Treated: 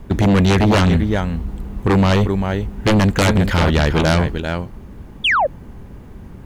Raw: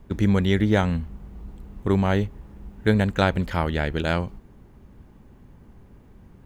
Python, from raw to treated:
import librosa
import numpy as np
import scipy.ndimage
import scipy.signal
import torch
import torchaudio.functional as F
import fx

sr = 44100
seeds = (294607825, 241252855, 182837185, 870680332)

y = x + 10.0 ** (-10.5 / 20.0) * np.pad(x, (int(394 * sr / 1000.0), 0))[:len(x)]
y = fx.spec_paint(y, sr, seeds[0], shape='fall', start_s=5.24, length_s=0.23, low_hz=500.0, high_hz=3600.0, level_db=-26.0)
y = fx.fold_sine(y, sr, drive_db=14, ceiling_db=-3.5)
y = F.gain(torch.from_numpy(y), -6.0).numpy()